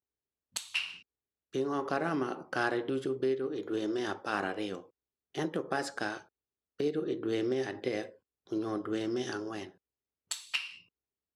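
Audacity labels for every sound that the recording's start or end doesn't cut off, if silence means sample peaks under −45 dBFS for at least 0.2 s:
0.560000	0.980000	sound
1.540000	4.800000	sound
5.350000	6.210000	sound
6.800000	8.090000	sound
8.520000	9.690000	sound
10.310000	10.780000	sound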